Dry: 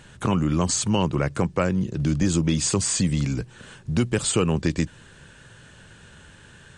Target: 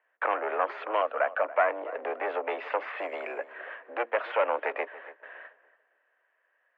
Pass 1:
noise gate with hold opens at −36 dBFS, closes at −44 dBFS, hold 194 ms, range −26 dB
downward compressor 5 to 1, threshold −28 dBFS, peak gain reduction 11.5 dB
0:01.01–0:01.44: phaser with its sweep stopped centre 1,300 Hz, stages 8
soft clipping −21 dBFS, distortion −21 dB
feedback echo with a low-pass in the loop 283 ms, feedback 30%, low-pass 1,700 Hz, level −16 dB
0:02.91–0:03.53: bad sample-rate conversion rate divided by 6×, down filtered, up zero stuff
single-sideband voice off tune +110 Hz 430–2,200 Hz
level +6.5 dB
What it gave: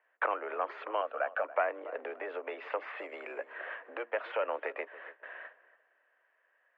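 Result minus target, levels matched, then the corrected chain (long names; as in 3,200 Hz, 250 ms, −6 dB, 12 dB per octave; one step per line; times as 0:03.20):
downward compressor: peak gain reduction +11.5 dB
noise gate with hold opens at −36 dBFS, closes at −44 dBFS, hold 194 ms, range −26 dB
0:01.01–0:01.44: phaser with its sweep stopped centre 1,300 Hz, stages 8
soft clipping −21 dBFS, distortion −10 dB
feedback echo with a low-pass in the loop 283 ms, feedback 30%, low-pass 1,700 Hz, level −16 dB
0:02.91–0:03.53: bad sample-rate conversion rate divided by 6×, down filtered, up zero stuff
single-sideband voice off tune +110 Hz 430–2,200 Hz
level +6.5 dB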